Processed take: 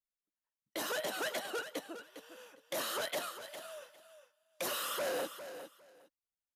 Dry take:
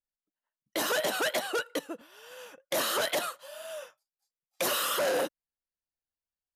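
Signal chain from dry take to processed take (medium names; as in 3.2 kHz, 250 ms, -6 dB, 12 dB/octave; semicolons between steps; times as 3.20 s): feedback delay 405 ms, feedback 18%, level -11 dB; trim -8 dB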